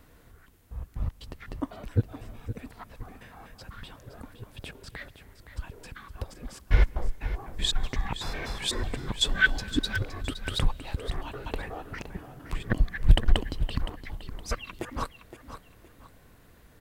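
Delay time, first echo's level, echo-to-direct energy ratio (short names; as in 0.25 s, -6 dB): 0.516 s, -11.5 dB, -11.0 dB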